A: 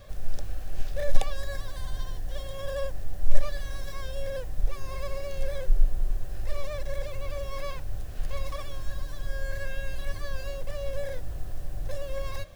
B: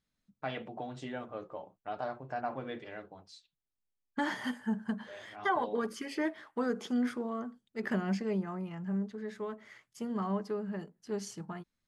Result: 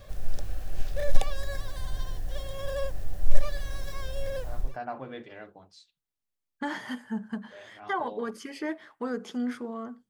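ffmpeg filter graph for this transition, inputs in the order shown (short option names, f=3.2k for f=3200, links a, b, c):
-filter_complex "[0:a]apad=whole_dur=10.09,atrim=end=10.09,atrim=end=4.78,asetpts=PTS-STARTPTS[a];[1:a]atrim=start=1.98:end=7.65,asetpts=PTS-STARTPTS[b];[a][b]acrossfade=d=0.36:c1=qsin:c2=qsin"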